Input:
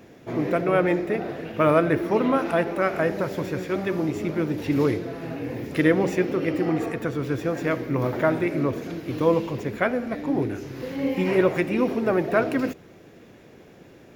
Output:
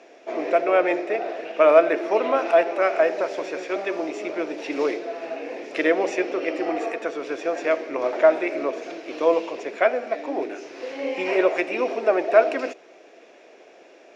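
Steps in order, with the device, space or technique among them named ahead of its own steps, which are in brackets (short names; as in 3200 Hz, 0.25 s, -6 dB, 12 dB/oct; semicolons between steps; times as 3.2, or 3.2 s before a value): phone speaker on a table (speaker cabinet 350–7600 Hz, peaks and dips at 660 Hz +9 dB, 2500 Hz +6 dB, 5600 Hz +4 dB)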